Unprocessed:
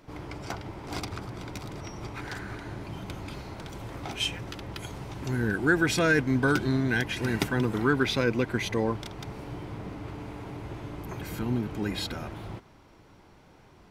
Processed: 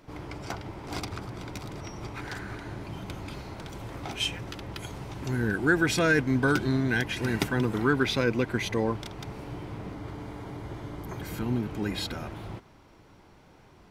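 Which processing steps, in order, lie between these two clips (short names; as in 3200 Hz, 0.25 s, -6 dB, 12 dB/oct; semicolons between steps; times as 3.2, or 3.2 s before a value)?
9.92–11.29 notch 2600 Hz, Q 8.2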